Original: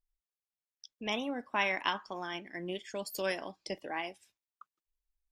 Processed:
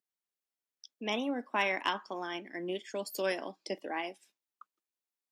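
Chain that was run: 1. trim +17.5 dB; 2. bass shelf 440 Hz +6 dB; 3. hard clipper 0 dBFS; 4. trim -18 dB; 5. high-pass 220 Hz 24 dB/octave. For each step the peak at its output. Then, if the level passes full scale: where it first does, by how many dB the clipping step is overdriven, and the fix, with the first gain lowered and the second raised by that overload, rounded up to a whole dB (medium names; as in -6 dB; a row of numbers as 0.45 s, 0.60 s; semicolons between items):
+3.5 dBFS, +3.5 dBFS, 0.0 dBFS, -18.0 dBFS, -15.5 dBFS; step 1, 3.5 dB; step 1 +13.5 dB, step 4 -14 dB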